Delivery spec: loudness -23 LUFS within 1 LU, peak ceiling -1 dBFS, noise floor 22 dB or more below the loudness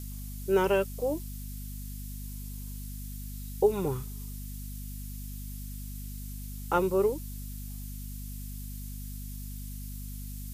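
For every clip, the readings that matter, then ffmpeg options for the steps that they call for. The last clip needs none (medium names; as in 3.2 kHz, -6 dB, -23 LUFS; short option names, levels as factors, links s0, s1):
hum 50 Hz; highest harmonic 250 Hz; hum level -37 dBFS; noise floor -39 dBFS; noise floor target -56 dBFS; loudness -34.0 LUFS; peak level -12.5 dBFS; loudness target -23.0 LUFS
-> -af "bandreject=f=50:t=h:w=4,bandreject=f=100:t=h:w=4,bandreject=f=150:t=h:w=4,bandreject=f=200:t=h:w=4,bandreject=f=250:t=h:w=4"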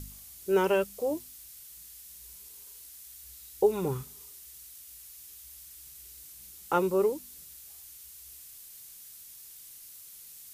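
hum not found; noise floor -49 dBFS; noise floor target -51 dBFS
-> -af "afftdn=nr=6:nf=-49"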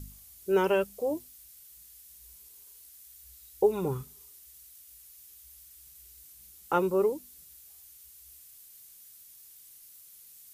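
noise floor -53 dBFS; loudness -29.0 LUFS; peak level -13.0 dBFS; loudness target -23.0 LUFS
-> -af "volume=2"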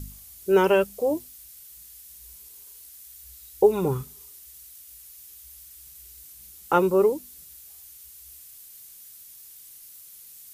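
loudness -23.0 LUFS; peak level -7.0 dBFS; noise floor -47 dBFS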